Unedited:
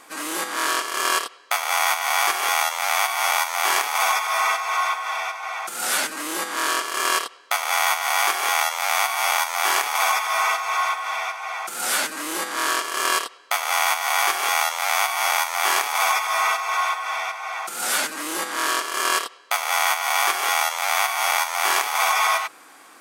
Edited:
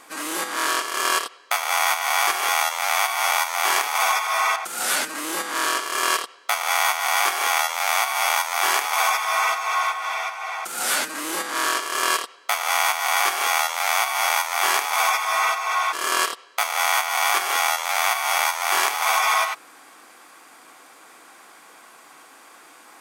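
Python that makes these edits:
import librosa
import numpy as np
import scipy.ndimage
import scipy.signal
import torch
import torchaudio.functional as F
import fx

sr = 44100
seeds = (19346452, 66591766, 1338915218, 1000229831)

y = fx.edit(x, sr, fx.cut(start_s=4.56, length_s=1.02),
    fx.cut(start_s=16.95, length_s=1.91), tone=tone)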